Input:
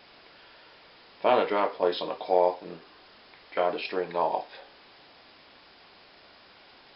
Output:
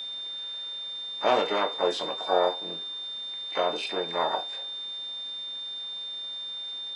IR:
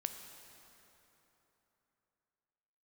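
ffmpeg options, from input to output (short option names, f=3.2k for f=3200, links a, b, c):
-filter_complex "[0:a]asplit=4[a][b][c][d];[b]asetrate=55563,aresample=44100,atempo=0.793701,volume=-13dB[e];[c]asetrate=66075,aresample=44100,atempo=0.66742,volume=-11dB[f];[d]asetrate=88200,aresample=44100,atempo=0.5,volume=-13dB[g];[a][e][f][g]amix=inputs=4:normalize=0,aeval=exprs='val(0)+0.0251*sin(2*PI*3600*n/s)':c=same,volume=-1.5dB"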